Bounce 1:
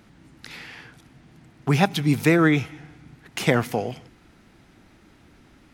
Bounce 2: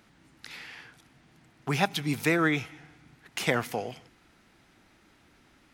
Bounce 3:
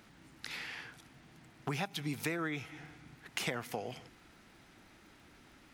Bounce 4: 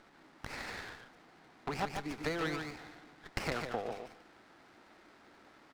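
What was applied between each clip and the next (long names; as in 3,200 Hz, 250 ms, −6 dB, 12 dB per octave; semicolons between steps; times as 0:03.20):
low-shelf EQ 470 Hz −8 dB; level −3 dB
downward compressor 6 to 1, threshold −35 dBFS, peak gain reduction 15 dB; surface crackle 120 per second −59 dBFS; level +1 dB
band-pass filter 350–3,500 Hz; on a send: single-tap delay 146 ms −5.5 dB; on the sum: windowed peak hold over 9 samples; level +3 dB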